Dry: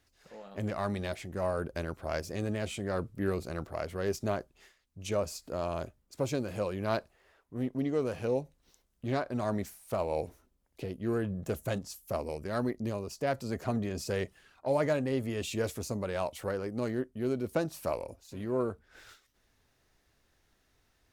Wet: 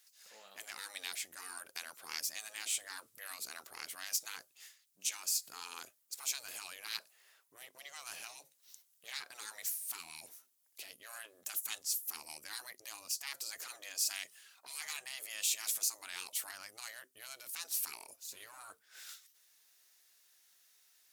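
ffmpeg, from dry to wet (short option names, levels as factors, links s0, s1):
-filter_complex "[0:a]asettb=1/sr,asplit=3[s0][s1][s2];[s0]atrim=end=4.214[s3];[s1]atrim=start=4.21:end=5.52,asetpts=PTS-STARTPTS,afade=t=in:d=0.004:c=qsin,afade=t=out:st=1.306:d=0.004:c=qsin,asubboost=boost=11:cutoff=190[s4];[s2]atrim=start=5.516[s5];[s3][s4]acrossfade=d=0.004:c1=hsin:c2=qsin[s6];[s6][s5]acrossfade=d=0.004:c1=qsin:c2=hsin,lowshelf=f=150:g=-8.5,afftfilt=real='re*lt(hypot(re,im),0.0398)':imag='im*lt(hypot(re,im),0.0398)':win_size=1024:overlap=0.75,aderivative,volume=3.35"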